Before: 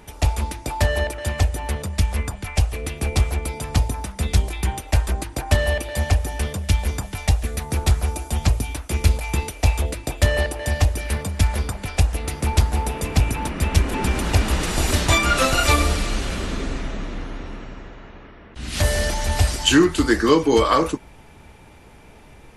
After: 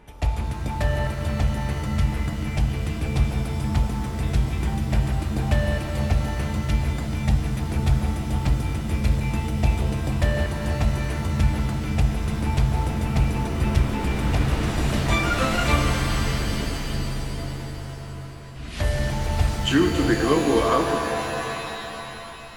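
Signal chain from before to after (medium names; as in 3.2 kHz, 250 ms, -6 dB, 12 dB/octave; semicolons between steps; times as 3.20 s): tone controls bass +1 dB, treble -9 dB; pitch-shifted reverb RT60 3.2 s, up +7 st, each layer -2 dB, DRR 5.5 dB; trim -5.5 dB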